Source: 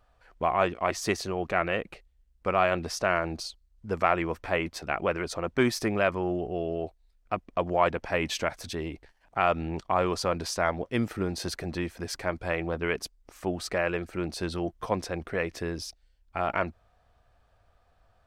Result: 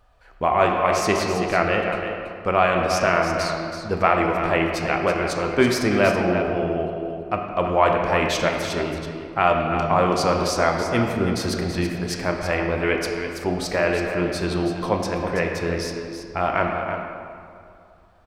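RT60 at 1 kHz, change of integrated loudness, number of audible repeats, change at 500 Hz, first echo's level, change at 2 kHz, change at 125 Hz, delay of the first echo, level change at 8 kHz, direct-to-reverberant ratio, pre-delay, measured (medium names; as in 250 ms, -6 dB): 2.4 s, +7.5 dB, 1, +8.0 dB, -8.5 dB, +7.5 dB, +8.0 dB, 329 ms, +6.0 dB, 0.5 dB, 14 ms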